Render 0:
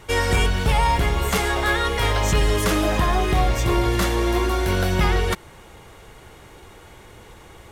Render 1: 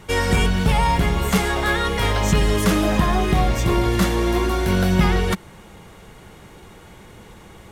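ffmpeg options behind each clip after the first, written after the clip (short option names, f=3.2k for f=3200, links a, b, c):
-af "equalizer=f=190:t=o:w=0.68:g=9.5"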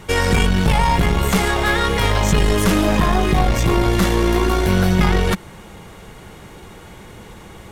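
-filter_complex "[0:a]asplit=2[a][b];[b]alimiter=limit=-13.5dB:level=0:latency=1,volume=1dB[c];[a][c]amix=inputs=2:normalize=0,aeval=exprs='(tanh(2.24*val(0)+0.5)-tanh(0.5))/2.24':c=same"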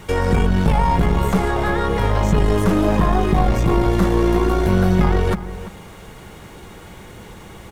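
-filter_complex "[0:a]acrossover=split=1400[a][b];[b]acompressor=threshold=-35dB:ratio=5[c];[a][c]amix=inputs=2:normalize=0,acrusher=bits=8:mix=0:aa=0.5,asplit=2[d][e];[e]adelay=338.2,volume=-14dB,highshelf=f=4k:g=-7.61[f];[d][f]amix=inputs=2:normalize=0"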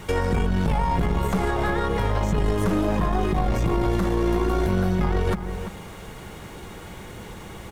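-af "alimiter=limit=-13dB:level=0:latency=1:release=159"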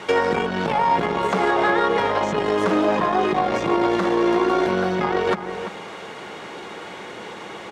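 -af "highpass=340,lowpass=4.9k,volume=7.5dB"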